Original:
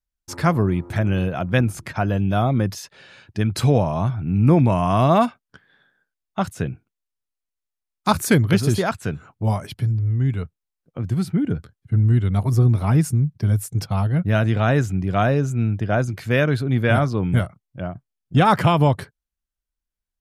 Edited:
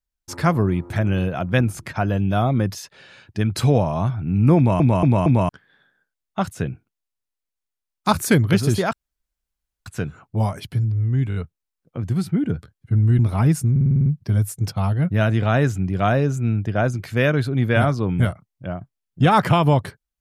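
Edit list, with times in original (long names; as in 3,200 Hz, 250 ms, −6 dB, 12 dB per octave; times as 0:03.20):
0:04.57: stutter in place 0.23 s, 4 plays
0:08.93: splice in room tone 0.93 s
0:10.36: stutter 0.02 s, 4 plays
0:12.20–0:12.68: remove
0:13.20: stutter 0.05 s, 8 plays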